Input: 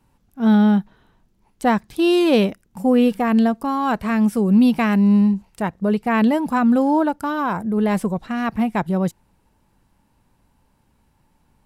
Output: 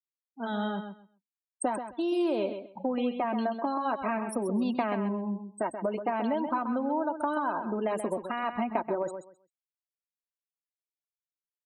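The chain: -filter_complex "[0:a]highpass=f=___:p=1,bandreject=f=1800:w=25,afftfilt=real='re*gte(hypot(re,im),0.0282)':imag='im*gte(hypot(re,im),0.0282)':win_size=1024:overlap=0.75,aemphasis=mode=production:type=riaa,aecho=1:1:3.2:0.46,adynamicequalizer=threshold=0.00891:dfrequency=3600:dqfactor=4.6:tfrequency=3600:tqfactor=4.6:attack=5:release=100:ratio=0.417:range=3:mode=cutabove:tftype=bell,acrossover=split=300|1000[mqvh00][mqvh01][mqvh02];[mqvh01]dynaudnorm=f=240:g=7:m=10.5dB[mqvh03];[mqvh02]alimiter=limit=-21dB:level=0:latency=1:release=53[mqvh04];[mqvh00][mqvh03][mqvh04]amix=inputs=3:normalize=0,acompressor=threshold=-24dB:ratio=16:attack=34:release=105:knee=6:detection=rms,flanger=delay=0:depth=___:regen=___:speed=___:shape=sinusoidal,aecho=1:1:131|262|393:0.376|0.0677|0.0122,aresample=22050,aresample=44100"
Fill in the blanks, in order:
42, 6.2, -59, 0.42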